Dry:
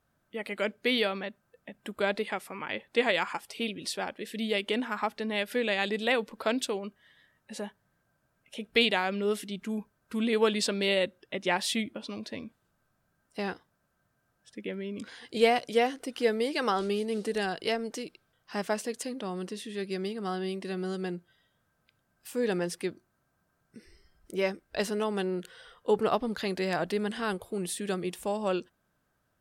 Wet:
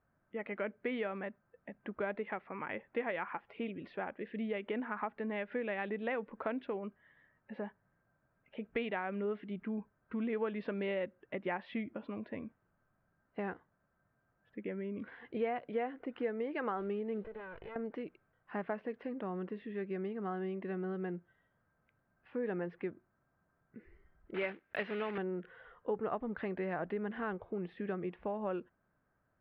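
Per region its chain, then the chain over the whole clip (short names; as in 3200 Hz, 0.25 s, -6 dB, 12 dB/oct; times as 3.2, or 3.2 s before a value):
17.24–17.76 minimum comb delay 2 ms + compressor 8:1, threshold -40 dBFS
24.34–25.18 block floating point 3-bit + weighting filter D
whole clip: inverse Chebyshev low-pass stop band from 6700 Hz, stop band 60 dB; compressor 2.5:1, threshold -33 dBFS; gain -2.5 dB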